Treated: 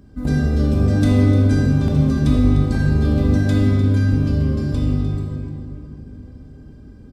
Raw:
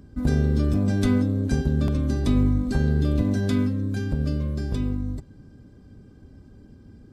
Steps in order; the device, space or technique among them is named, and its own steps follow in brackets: cave (delay 301 ms -12.5 dB; reverberation RT60 3.1 s, pre-delay 16 ms, DRR -3 dB)

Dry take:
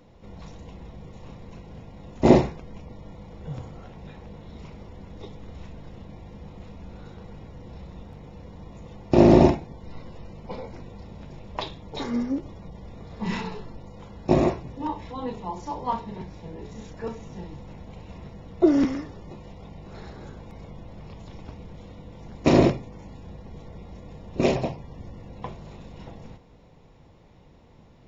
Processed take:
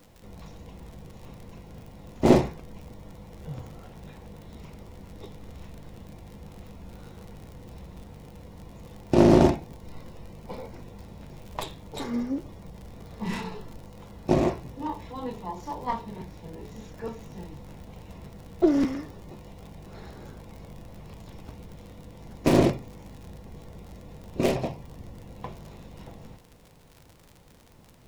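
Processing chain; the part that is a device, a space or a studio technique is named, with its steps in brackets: record under a worn stylus (tracing distortion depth 0.17 ms; crackle 56 per s -36 dBFS; pink noise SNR 33 dB); trim -2.5 dB

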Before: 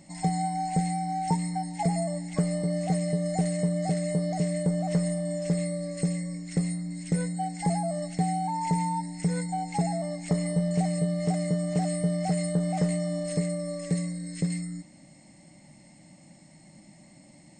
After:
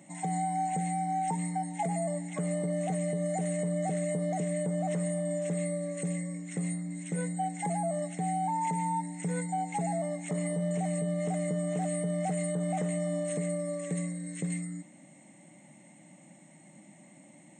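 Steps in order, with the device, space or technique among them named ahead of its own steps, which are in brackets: PA system with an anti-feedback notch (high-pass 130 Hz; Butterworth band-stop 4.8 kHz, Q 2; peak limiter -22.5 dBFS, peak gain reduction 7 dB); high-pass 150 Hz

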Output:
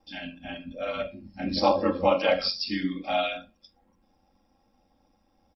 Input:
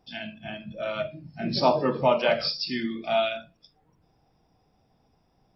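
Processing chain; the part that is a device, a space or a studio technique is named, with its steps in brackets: ring-modulated robot voice (ring modulator 46 Hz; comb 3.7 ms, depth 90%)

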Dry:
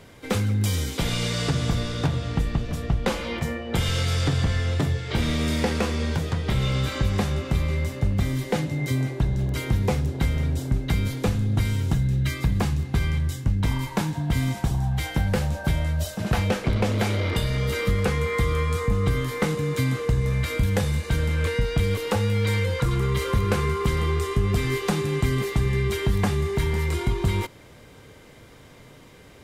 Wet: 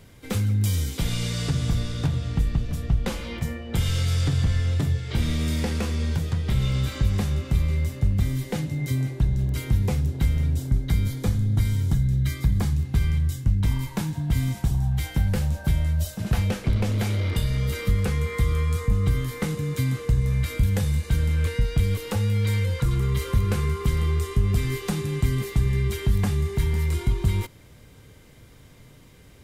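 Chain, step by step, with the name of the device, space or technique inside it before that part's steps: smiley-face EQ (bass shelf 180 Hz +7.5 dB; peaking EQ 680 Hz -4 dB 2.7 oct; treble shelf 9.4 kHz +7.5 dB); 10.70–12.76 s: band-stop 2.7 kHz, Q 7; trim -4 dB

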